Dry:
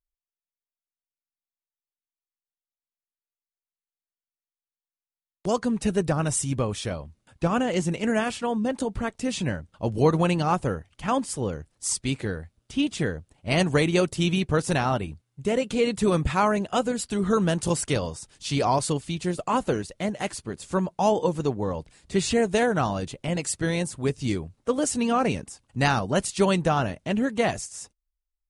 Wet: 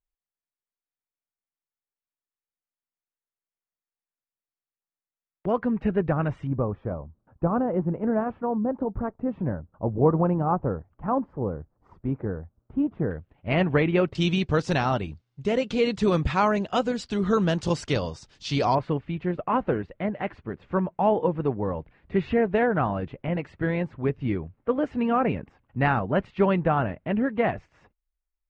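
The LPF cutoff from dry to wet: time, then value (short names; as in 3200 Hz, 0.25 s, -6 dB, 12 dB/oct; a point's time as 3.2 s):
LPF 24 dB/oct
2200 Hz
from 6.47 s 1200 Hz
from 13.11 s 2600 Hz
from 14.15 s 5500 Hz
from 18.75 s 2300 Hz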